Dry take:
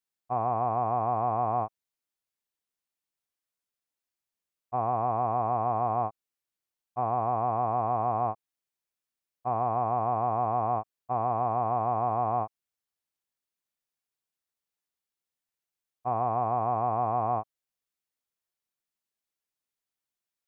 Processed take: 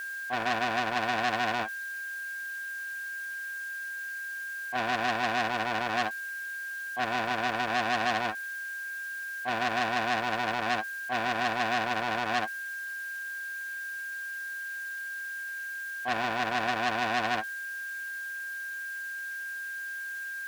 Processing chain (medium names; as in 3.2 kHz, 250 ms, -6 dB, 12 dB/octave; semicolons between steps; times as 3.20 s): zero-crossing glitches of -28.5 dBFS; gate -28 dBFS, range -10 dB; graphic EQ 125/250/2000 Hz -9/+10/+5 dB; whistle 1.6 kHz -39 dBFS; overdrive pedal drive 14 dB, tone 2.2 kHz, clips at -9.5 dBFS; word length cut 10-bit, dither none; tilt shelf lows +4 dB, about 800 Hz; transformer saturation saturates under 2.9 kHz